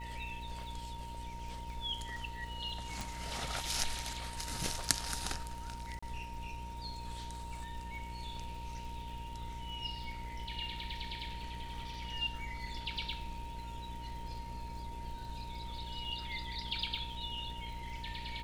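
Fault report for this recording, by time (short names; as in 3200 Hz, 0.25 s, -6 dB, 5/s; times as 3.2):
buzz 60 Hz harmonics 11 -46 dBFS
crackle 150/s -48 dBFS
tone 930 Hz -46 dBFS
3.01 pop
5.99–6.03 gap 35 ms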